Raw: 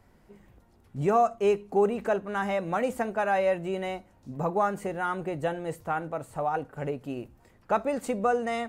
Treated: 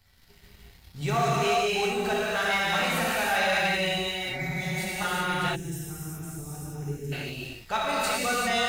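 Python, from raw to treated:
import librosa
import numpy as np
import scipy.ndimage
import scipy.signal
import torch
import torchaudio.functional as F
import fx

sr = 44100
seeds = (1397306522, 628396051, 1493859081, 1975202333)

y = fx.graphic_eq(x, sr, hz=(250, 500, 1000, 4000, 8000), db=(-11, -10, -5, 11, -7))
y = fx.rev_gated(y, sr, seeds[0], gate_ms=430, shape='flat', drr_db=-7.5)
y = fx.leveller(y, sr, passes=1)
y = fx.spec_repair(y, sr, seeds[1], start_s=4.28, length_s=0.71, low_hz=280.0, high_hz=2500.0, source='before')
y = fx.high_shelf(y, sr, hz=4400.0, db=11.5)
y = fx.spec_box(y, sr, start_s=5.56, length_s=1.56, low_hz=460.0, high_hz=5000.0, gain_db=-20)
y = y * 10.0 ** (-3.0 / 20.0)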